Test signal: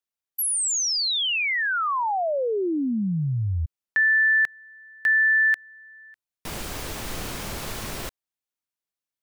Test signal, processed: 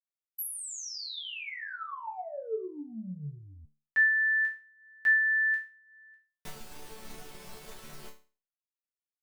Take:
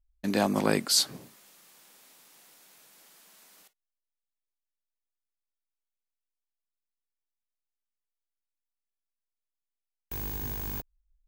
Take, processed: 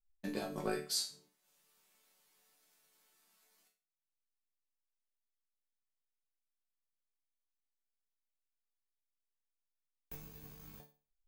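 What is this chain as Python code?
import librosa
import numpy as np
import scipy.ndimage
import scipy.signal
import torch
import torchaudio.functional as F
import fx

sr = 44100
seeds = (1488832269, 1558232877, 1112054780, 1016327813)

y = fx.dynamic_eq(x, sr, hz=430.0, q=2.3, threshold_db=-42.0, ratio=4.0, max_db=4)
y = fx.transient(y, sr, attack_db=9, sustain_db=-8)
y = fx.resonator_bank(y, sr, root=50, chord='major', decay_s=0.35)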